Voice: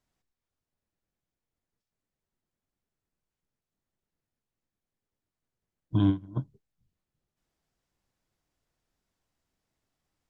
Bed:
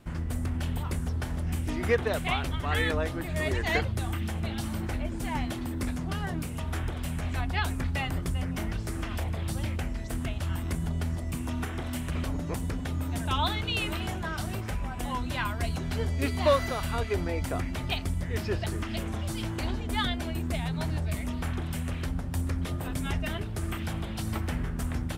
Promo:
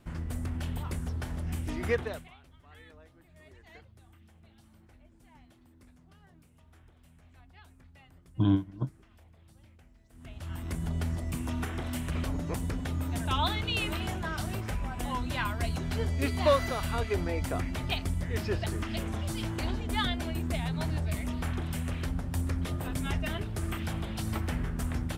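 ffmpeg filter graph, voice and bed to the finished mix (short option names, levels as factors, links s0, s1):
-filter_complex "[0:a]adelay=2450,volume=0.891[s0];[1:a]volume=12.6,afade=t=out:st=1.95:d=0.34:silence=0.0707946,afade=t=in:st=10.13:d=0.84:silence=0.0530884[s1];[s0][s1]amix=inputs=2:normalize=0"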